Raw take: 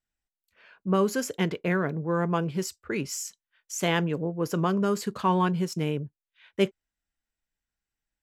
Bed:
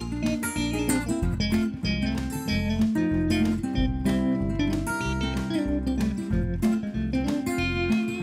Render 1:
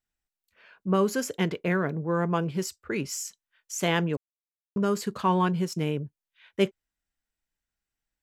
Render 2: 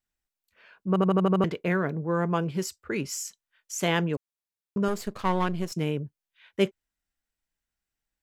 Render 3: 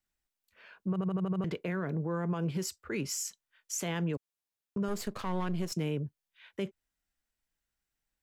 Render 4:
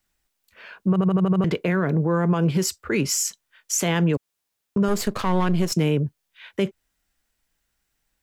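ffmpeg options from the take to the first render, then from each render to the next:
-filter_complex "[0:a]asplit=3[s0][s1][s2];[s0]atrim=end=4.17,asetpts=PTS-STARTPTS,afade=t=out:st=4.166:d=0.004:c=hsin[s3];[s1]atrim=start=4.17:end=4.76,asetpts=PTS-STARTPTS,volume=0[s4];[s2]atrim=start=4.76,asetpts=PTS-STARTPTS,afade=t=in:d=0.004:c=hsin[s5];[s3][s4][s5]concat=n=3:v=0:a=1"
-filter_complex "[0:a]asettb=1/sr,asplit=3[s0][s1][s2];[s0]atrim=end=4.884[s3];[s1]atrim=start=4.88:end=5.72,asetpts=PTS-STARTPTS,afade=t=in:d=0.004:c=qsin,afade=t=out:st=0.836:d=0.004:c=qsin,aeval=exprs='if(lt(val(0),0),0.251*val(0),val(0))':c=same[s4];[s2]atrim=start=5.716[s5];[s3][s4]acrossfade=d=0.004:c1=hsin:c2=qsin[s6];[s6][s5]acrossfade=d=0.004:c1=qsin:c2=hsin,asplit=8[s7][s8][s9][s10][s11][s12][s13][s14];[s7]atrim=end=0.962[s15];[s8]atrim=start=0.878:end=0.962[s16];[s9]atrim=start=0.878:end=0.962[s17];[s10]atrim=start=0.878:end=0.962[s18];[s11]atrim=start=0.878:end=0.962[s19];[s12]atrim=start=0.878:end=0.962[s20];[s13]atrim=start=0.878:end=0.962[s21];[s14]atrim=start=1.438[s22];[s15][s16]acrossfade=d=0.004:c1=hsin:c2=hsin[s23];[s23][s17]acrossfade=d=0.004:c1=hsin:c2=hsin[s24];[s24][s18]acrossfade=d=0.004:c1=hsin:c2=hsin[s25];[s25][s19]acrossfade=d=0.004:c1=hsin:c2=hsin[s26];[s26][s20]acrossfade=d=0.004:c1=hsin:c2=hsin[s27];[s27][s21]acrossfade=d=0.004:c1=hsin:c2=hsin[s28];[s28][s22]acrossfade=d=0.004:c1=hsin:c2=hsin"
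-filter_complex "[0:a]acrossover=split=210[s0][s1];[s1]acompressor=threshold=0.0447:ratio=6[s2];[s0][s2]amix=inputs=2:normalize=0,alimiter=level_in=1.12:limit=0.0631:level=0:latency=1:release=82,volume=0.891"
-af "volume=3.98"

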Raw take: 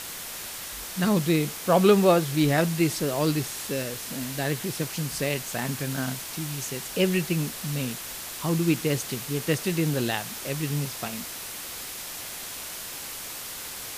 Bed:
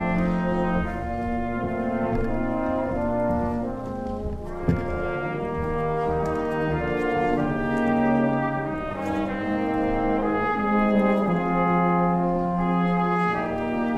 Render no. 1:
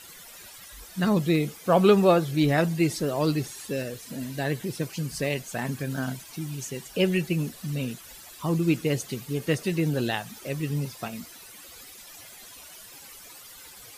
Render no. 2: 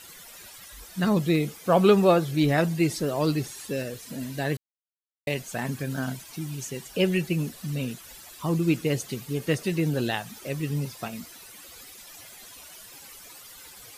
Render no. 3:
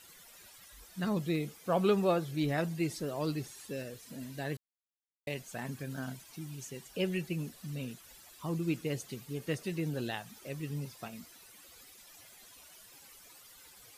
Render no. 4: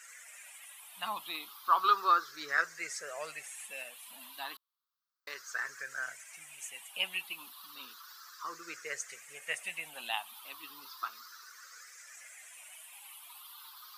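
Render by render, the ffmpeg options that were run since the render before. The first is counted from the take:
-af "afftdn=nr=14:nf=-37"
-filter_complex "[0:a]asplit=3[s0][s1][s2];[s0]atrim=end=4.57,asetpts=PTS-STARTPTS,afade=t=out:st=4.566:d=0.004:c=hsin[s3];[s1]atrim=start=4.57:end=5.27,asetpts=PTS-STARTPTS,volume=0[s4];[s2]atrim=start=5.27,asetpts=PTS-STARTPTS,afade=t=in:d=0.004:c=hsin[s5];[s3][s4][s5]concat=n=3:v=0:a=1"
-af "volume=0.335"
-af "afftfilt=real='re*pow(10,15/40*sin(2*PI*(0.53*log(max(b,1)*sr/1024/100)/log(2)-(0.33)*(pts-256)/sr)))':imag='im*pow(10,15/40*sin(2*PI*(0.53*log(max(b,1)*sr/1024/100)/log(2)-(0.33)*(pts-256)/sr)))':win_size=1024:overlap=0.75,highpass=f=1200:t=q:w=2.6"

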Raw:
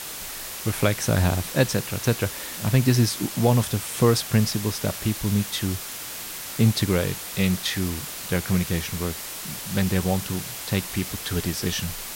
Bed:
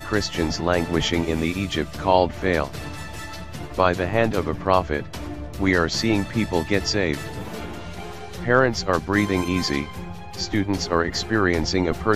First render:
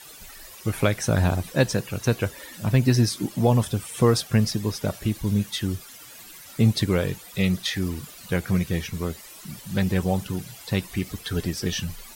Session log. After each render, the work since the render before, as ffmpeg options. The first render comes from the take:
-af "afftdn=nr=14:nf=-35"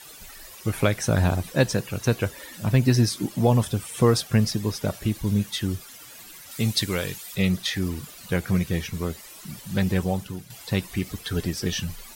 -filter_complex "[0:a]asettb=1/sr,asplit=3[s0][s1][s2];[s0]atrim=end=6.514[s3];[s1]atrim=start=6.51:end=7.35,asetpts=PTS-STARTPTS,afade=t=in:d=0.004:c=qsin,afade=t=out:st=0.836:d=0.004:c=qsin,tiltshelf=f=1500:g=-6[s4];[s2]atrim=start=7.346[s5];[s3][s4]acrossfade=d=0.004:c1=hsin:c2=qsin[s6];[s6][s5]acrossfade=d=0.004:c1=qsin:c2=hsin,asplit=2[s7][s8];[s7]atrim=end=10.5,asetpts=PTS-STARTPTS,afade=t=out:st=9.95:d=0.55:silence=0.354813[s9];[s8]atrim=start=10.5,asetpts=PTS-STARTPTS,afade=t=in:d=0.004:c=hsin:silence=0.354813[s10];[s9][s10]concat=n=2:v=0:a=1"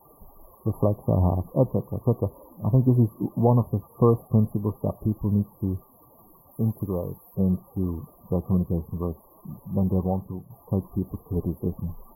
-af "afftfilt=real='re*(1-between(b*sr/4096,1200,11000))':imag='im*(1-between(b*sr/4096,1200,11000))':win_size=4096:overlap=0.75,highshelf=f=4700:g=-11"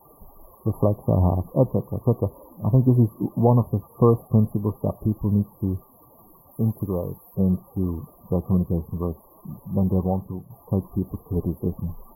-af "volume=1.26"

